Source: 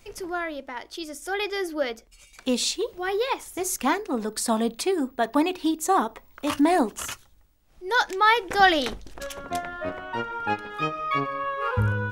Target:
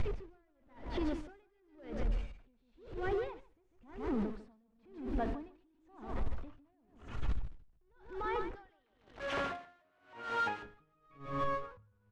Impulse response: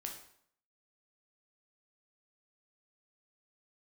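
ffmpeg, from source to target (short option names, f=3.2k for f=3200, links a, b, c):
-filter_complex "[0:a]aeval=exprs='val(0)+0.5*0.0668*sgn(val(0))':c=same,asettb=1/sr,asplit=3[a][b][c];[a]atrim=end=8.554[d];[b]atrim=start=8.55:end=10.63,asetpts=PTS-STARTPTS,afade=t=in:d=0.004:c=qsin,afade=t=out:st=2.076:d=0.004:c=qsin,highpass=f=1.3k:p=1[e];[c]atrim=start=10.626[f];[d][e]acrossfade=d=0.004:c1=hsin:c2=qsin[g];[g][f]acrossfade=d=0.004:c1=qsin:c2=hsin,acompressor=threshold=-24dB:ratio=6,lowpass=8k,aemphasis=mode=reproduction:type=riaa,acrossover=split=3300[h][i];[i]acompressor=threshold=-53dB:ratio=4:attack=1:release=60[j];[h][j]amix=inputs=2:normalize=0,aecho=1:1:148|296|444|592|740:0.501|0.195|0.0762|0.0297|0.0116,alimiter=level_in=3.5dB:limit=-24dB:level=0:latency=1:release=191,volume=-3.5dB,aeval=exprs='val(0)*pow(10,-40*(0.5-0.5*cos(2*PI*0.96*n/s))/20)':c=same,volume=1.5dB"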